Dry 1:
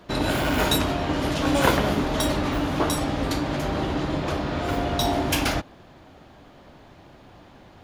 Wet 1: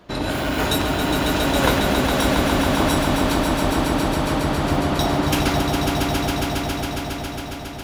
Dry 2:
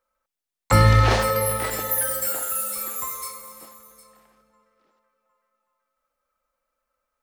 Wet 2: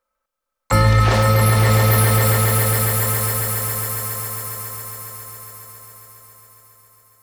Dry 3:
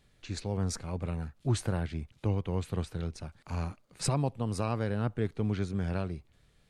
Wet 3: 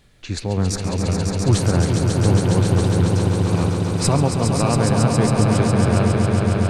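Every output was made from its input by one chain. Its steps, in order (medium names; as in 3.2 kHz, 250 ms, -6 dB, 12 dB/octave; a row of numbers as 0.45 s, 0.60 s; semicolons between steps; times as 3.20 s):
echo with a slow build-up 137 ms, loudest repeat 5, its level -6 dB; peak normalisation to -3 dBFS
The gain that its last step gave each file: -0.5 dB, +0.5 dB, +10.5 dB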